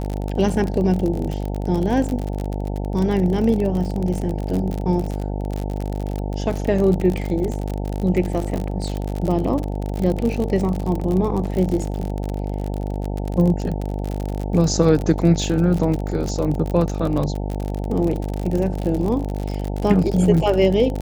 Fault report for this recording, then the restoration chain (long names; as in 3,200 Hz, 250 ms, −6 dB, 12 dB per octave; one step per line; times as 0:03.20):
mains buzz 50 Hz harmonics 18 −25 dBFS
surface crackle 46 per second −23 dBFS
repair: click removal
hum removal 50 Hz, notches 18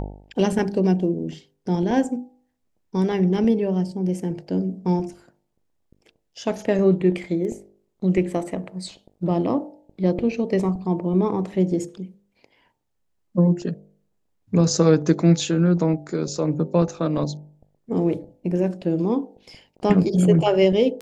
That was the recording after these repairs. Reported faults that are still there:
none of them is left